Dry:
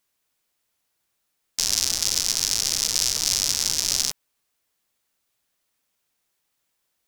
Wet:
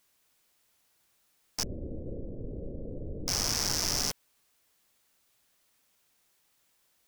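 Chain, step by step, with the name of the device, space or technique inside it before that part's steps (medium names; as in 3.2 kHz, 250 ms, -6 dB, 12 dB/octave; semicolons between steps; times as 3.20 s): 1.63–3.28 s: Chebyshev low-pass 550 Hz, order 5; saturation between pre-emphasis and de-emphasis (treble shelf 4.4 kHz +10.5 dB; saturation -16.5 dBFS, distortion -2 dB; treble shelf 4.4 kHz -10.5 dB); trim +4.5 dB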